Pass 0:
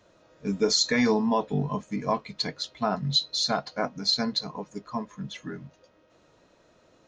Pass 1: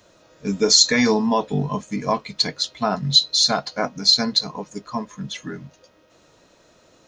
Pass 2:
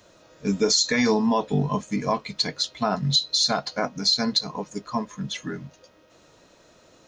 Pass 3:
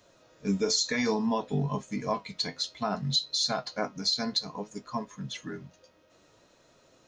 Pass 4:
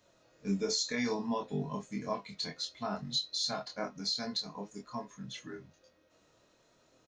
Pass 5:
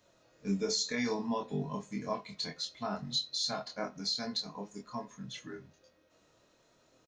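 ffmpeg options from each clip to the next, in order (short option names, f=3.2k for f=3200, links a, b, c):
-af "highshelf=f=4.1k:g=9.5,volume=4.5dB"
-af "alimiter=limit=-11dB:level=0:latency=1:release=155"
-af "flanger=delay=7.2:depth=4.4:regen=70:speed=0.59:shape=sinusoidal,volume=-2dB"
-filter_complex "[0:a]asplit=2[a][b];[b]adelay=25,volume=-3dB[c];[a][c]amix=inputs=2:normalize=0,volume=-7.5dB"
-filter_complex "[0:a]asplit=2[a][b];[b]adelay=88,lowpass=f=2k:p=1,volume=-24dB,asplit=2[c][d];[d]adelay=88,lowpass=f=2k:p=1,volume=0.46,asplit=2[e][f];[f]adelay=88,lowpass=f=2k:p=1,volume=0.46[g];[a][c][e][g]amix=inputs=4:normalize=0"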